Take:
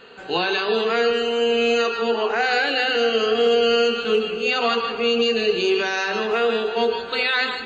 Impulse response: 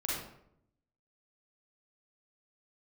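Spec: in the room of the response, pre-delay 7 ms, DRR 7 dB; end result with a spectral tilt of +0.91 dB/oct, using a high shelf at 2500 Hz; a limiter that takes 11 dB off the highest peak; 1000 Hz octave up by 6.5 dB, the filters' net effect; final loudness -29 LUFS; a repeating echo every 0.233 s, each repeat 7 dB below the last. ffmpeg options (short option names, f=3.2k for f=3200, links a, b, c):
-filter_complex "[0:a]equalizer=f=1k:t=o:g=8.5,highshelf=f=2.5k:g=5,alimiter=limit=-15.5dB:level=0:latency=1,aecho=1:1:233|466|699|932|1165:0.447|0.201|0.0905|0.0407|0.0183,asplit=2[a][b];[1:a]atrim=start_sample=2205,adelay=7[c];[b][c]afir=irnorm=-1:irlink=0,volume=-11.5dB[d];[a][d]amix=inputs=2:normalize=0,volume=-7.5dB"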